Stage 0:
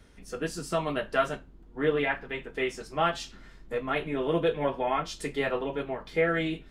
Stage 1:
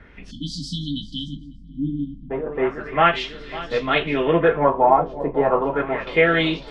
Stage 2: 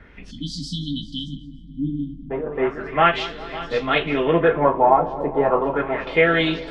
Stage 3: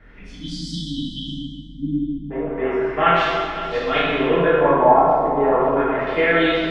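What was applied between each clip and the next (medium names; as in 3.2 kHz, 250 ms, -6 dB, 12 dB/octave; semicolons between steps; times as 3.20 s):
shuffle delay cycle 916 ms, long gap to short 1.5:1, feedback 40%, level -15 dB; LFO low-pass sine 0.34 Hz 770–4300 Hz; spectral selection erased 0.31–2.30 s, 320–3000 Hz; trim +8 dB
filtered feedback delay 203 ms, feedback 69%, low-pass 1.8 kHz, level -16.5 dB
plate-style reverb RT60 1.8 s, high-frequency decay 0.7×, DRR -7 dB; trim -6 dB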